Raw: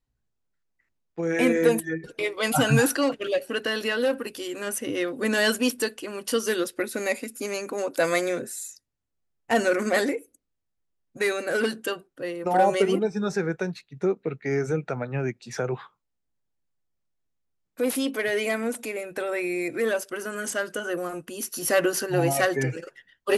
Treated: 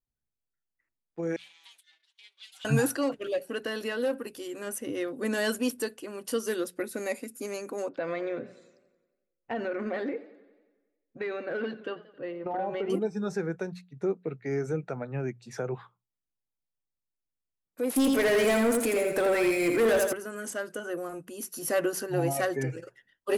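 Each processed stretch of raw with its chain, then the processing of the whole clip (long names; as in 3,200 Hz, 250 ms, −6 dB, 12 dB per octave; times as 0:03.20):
0:01.36–0:02.65: lower of the sound and its delayed copy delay 5.2 ms + four-pole ladder band-pass 3,900 Hz, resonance 60% + upward compression, threshold −53 dBFS
0:07.89–0:12.90: low-pass filter 3,500 Hz 24 dB per octave + downward compressor 4 to 1, threshold −23 dBFS + feedback echo with a swinging delay time 90 ms, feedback 62%, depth 96 cents, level −18.5 dB
0:17.96–0:20.13: repeating echo 83 ms, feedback 37%, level −5 dB + leveller curve on the samples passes 3
whole clip: mains-hum notches 60/120/180 Hz; noise reduction from a noise print of the clip's start 7 dB; parametric band 3,200 Hz −5.5 dB 2.7 octaves; level −4 dB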